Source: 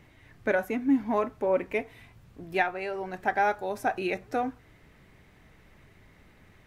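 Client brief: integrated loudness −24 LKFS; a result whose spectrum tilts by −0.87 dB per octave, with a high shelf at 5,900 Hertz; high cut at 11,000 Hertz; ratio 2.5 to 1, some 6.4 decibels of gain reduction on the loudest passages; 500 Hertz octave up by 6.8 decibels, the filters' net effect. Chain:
low-pass filter 11,000 Hz
parametric band 500 Hz +8.5 dB
high-shelf EQ 5,900 Hz −8.5 dB
downward compressor 2.5 to 1, threshold −24 dBFS
level +5 dB

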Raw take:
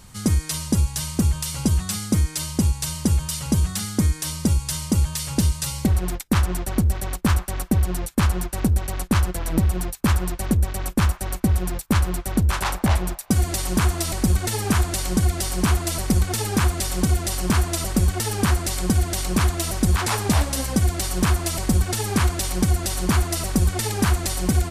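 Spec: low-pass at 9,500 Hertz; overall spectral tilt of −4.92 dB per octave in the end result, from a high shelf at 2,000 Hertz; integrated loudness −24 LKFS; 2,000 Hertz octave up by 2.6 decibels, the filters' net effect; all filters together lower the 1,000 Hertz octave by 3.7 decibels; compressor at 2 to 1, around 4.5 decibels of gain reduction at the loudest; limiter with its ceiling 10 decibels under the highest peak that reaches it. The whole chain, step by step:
low-pass filter 9,500 Hz
parametric band 1,000 Hz −6 dB
high-shelf EQ 2,000 Hz −5.5 dB
parametric band 2,000 Hz +8.5 dB
downward compressor 2 to 1, threshold −23 dBFS
level +6 dB
brickwall limiter −14.5 dBFS

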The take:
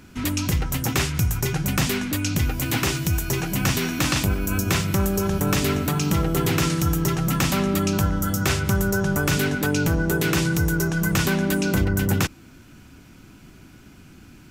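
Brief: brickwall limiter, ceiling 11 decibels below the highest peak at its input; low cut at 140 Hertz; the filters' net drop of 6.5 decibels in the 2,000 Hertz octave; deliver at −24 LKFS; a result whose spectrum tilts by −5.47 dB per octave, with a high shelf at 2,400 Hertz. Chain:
high-pass filter 140 Hz
parametric band 2,000 Hz −7.5 dB
high-shelf EQ 2,400 Hz −4.5 dB
level +6 dB
brickwall limiter −15 dBFS

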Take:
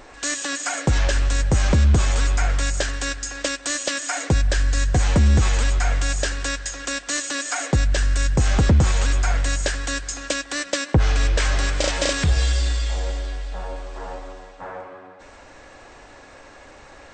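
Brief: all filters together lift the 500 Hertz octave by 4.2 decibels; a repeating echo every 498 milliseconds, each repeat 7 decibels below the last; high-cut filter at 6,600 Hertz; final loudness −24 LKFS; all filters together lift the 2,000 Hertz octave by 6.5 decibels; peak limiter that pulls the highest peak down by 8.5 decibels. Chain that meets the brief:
low-pass filter 6,600 Hz
parametric band 500 Hz +4.5 dB
parametric band 2,000 Hz +8 dB
brickwall limiter −13.5 dBFS
repeating echo 498 ms, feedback 45%, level −7 dB
level −1.5 dB

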